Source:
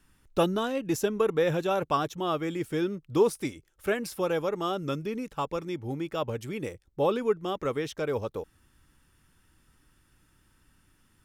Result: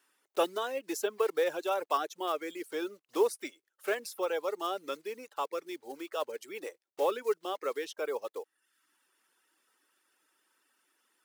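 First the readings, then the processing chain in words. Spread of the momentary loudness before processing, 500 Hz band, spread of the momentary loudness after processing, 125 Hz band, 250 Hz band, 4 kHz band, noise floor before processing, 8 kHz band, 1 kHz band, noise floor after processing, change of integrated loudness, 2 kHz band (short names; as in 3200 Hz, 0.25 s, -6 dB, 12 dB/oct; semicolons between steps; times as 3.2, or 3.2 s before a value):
10 LU, -4.0 dB, 12 LU, under -30 dB, -11.0 dB, -3.0 dB, -67 dBFS, -2.0 dB, -3.0 dB, -83 dBFS, -4.5 dB, -3.0 dB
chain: block floating point 5-bit; reverb removal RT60 0.69 s; HPF 380 Hz 24 dB/oct; gain -2.5 dB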